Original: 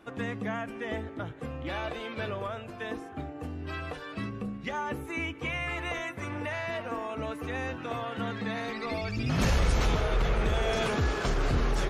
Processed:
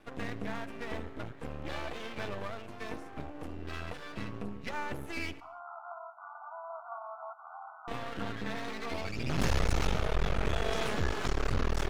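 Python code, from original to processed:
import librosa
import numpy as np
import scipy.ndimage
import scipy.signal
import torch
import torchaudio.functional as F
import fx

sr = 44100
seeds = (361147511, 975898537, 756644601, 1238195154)

y = np.maximum(x, 0.0)
y = fx.brickwall_bandpass(y, sr, low_hz=640.0, high_hz=1500.0, at=(5.4, 7.88))
y = fx.echo_feedback(y, sr, ms=72, feedback_pct=50, wet_db=-21)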